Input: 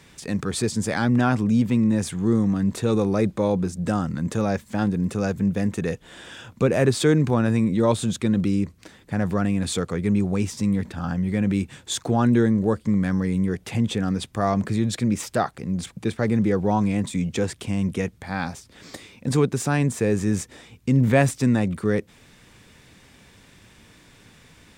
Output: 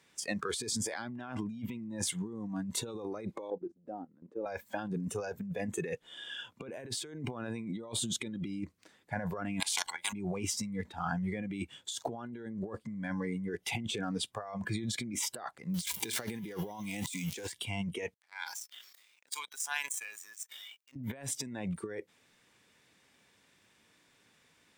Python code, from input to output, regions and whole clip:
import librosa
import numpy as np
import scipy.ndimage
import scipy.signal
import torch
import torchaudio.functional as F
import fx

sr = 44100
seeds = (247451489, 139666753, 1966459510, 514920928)

y = fx.chain(x, sr, fx.bandpass_q(hz=330.0, q=1.4),
    fx.level_steps(step_db=15), at=(3.5, 4.46))
y = fx.chain(y, sr, fx.level_steps(step_db=24),
    fx.spectral_comp(ratio=10.0), at=(9.6, 10.13))
y = fx.chain(y, sr, fx.zero_step(step_db=-35.0),
    fx.high_shelf(hz=2400.0, db=11.0), at=(15.74, 17.52))
y = fx.chain(y, sr, fx.highpass(hz=1400.0, slope=12),
    fx.power_curve(exponent=2.0),
    fx.sustainer(db_per_s=23.0), at=(18.14, 20.96))
y = fx.noise_reduce_blind(y, sr, reduce_db=15)
y = fx.highpass(y, sr, hz=380.0, slope=6)
y = fx.over_compress(y, sr, threshold_db=-34.0, ratio=-1.0)
y = y * 10.0 ** (-4.0 / 20.0)